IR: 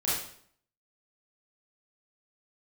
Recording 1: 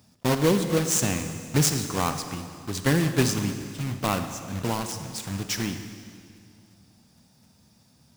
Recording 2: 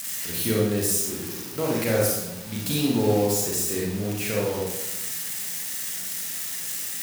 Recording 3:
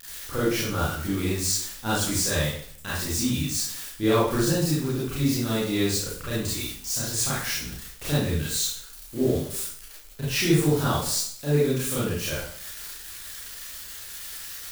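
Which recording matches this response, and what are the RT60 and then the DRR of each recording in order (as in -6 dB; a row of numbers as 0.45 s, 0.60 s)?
3; 2.3 s, 1.0 s, 0.60 s; 7.5 dB, -3.5 dB, -9.5 dB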